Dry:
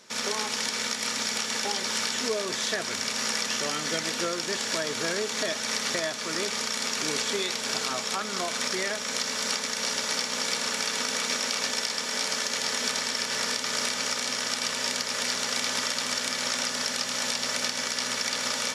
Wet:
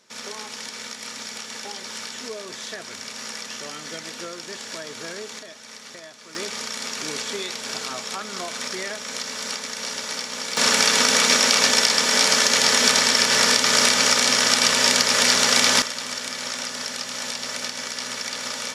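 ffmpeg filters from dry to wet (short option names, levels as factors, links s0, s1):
-af "asetnsamples=n=441:p=0,asendcmd='5.39 volume volume -12.5dB;6.35 volume volume -1dB;10.57 volume volume 11dB;15.82 volume volume -1dB',volume=0.531"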